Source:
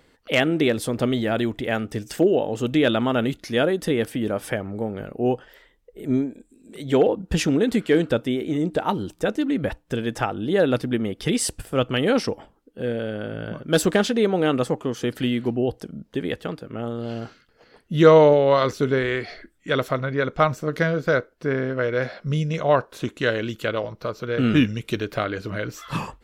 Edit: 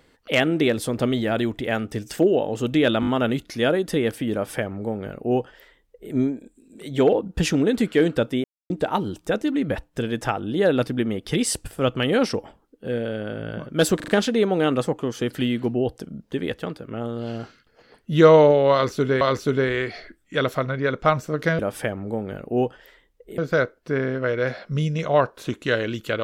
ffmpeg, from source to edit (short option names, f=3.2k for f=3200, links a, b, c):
-filter_complex "[0:a]asplit=12[a][b][c][d][e][f][g][h][i][j][k][l];[a]atrim=end=3.032[m];[b]atrim=start=3.008:end=3.032[n];[c]atrim=start=3.008:end=3.032[o];[d]atrim=start=3.008:end=8.38,asetpts=PTS-STARTPTS,afade=t=out:st=5.368:d=0.004:c=hsin[p];[e]atrim=start=8.38:end=8.64,asetpts=PTS-STARTPTS,volume=0[q];[f]atrim=start=8.64:end=13.942,asetpts=PTS-STARTPTS,afade=t=in:d=0.004:c=hsin[r];[g]atrim=start=13.898:end=13.942[s];[h]atrim=start=13.898:end=13.942[t];[i]atrim=start=13.898:end=19.032[u];[j]atrim=start=18.548:end=20.932[v];[k]atrim=start=4.268:end=6.062[w];[l]atrim=start=20.928[x];[m][n]acrossfade=d=0.004:c1=hsin:c2=hsin[y];[y][o]acrossfade=d=0.004:c1=hsin:c2=hsin[z];[p][q][r]concat=n=3:v=0:a=1[aa];[z][aa]acrossfade=d=0.004:c1=hsin:c2=hsin[ab];[ab][s]acrossfade=d=0.004:c1=hsin:c2=hsin[ac];[ac][t]acrossfade=d=0.004:c1=hsin:c2=hsin[ad];[ad][u]acrossfade=d=0.004:c1=hsin:c2=hsin[ae];[ae][v]acrossfade=d=0.004:c1=hsin:c2=hsin[af];[af][w]acrossfade=d=0.004:c1=hsin:c2=hsin[ag];[ag][x]acrossfade=d=0.004:c1=hsin:c2=hsin"